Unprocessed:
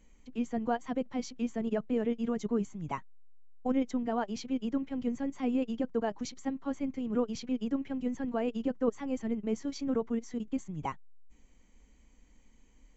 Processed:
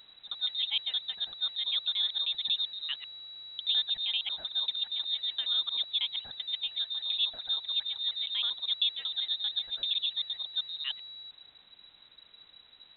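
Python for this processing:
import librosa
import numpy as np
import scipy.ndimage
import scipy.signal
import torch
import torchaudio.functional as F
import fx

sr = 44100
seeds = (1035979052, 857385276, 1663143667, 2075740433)

y = fx.local_reverse(x, sr, ms=78.0)
y = fx.quant_dither(y, sr, seeds[0], bits=10, dither='triangular')
y = fx.freq_invert(y, sr, carrier_hz=3900)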